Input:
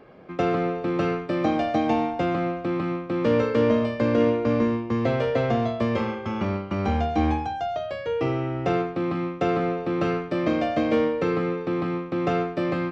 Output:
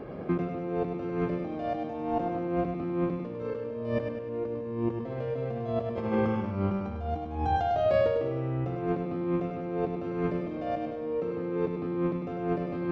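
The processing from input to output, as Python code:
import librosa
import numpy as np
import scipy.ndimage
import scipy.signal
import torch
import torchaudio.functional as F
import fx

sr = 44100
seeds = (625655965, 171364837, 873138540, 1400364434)

p1 = fx.tilt_shelf(x, sr, db=6.0, hz=890.0)
p2 = fx.over_compress(p1, sr, threshold_db=-30.0, ratio=-1.0)
p3 = p2 + fx.echo_feedback(p2, sr, ms=101, feedback_pct=49, wet_db=-5.5, dry=0)
y = p3 * librosa.db_to_amplitude(-2.5)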